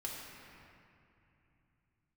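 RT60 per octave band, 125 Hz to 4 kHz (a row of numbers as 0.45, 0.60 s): 4.2, 3.7, 2.8, 2.8, 2.8, 1.7 s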